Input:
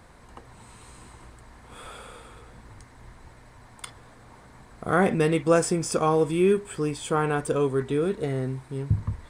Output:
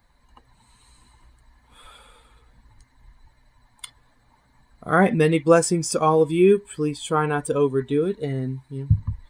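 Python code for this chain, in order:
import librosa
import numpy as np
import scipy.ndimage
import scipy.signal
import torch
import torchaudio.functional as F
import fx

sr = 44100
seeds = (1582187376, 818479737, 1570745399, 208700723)

y = fx.bin_expand(x, sr, power=1.5)
y = y * 10.0 ** (6.0 / 20.0)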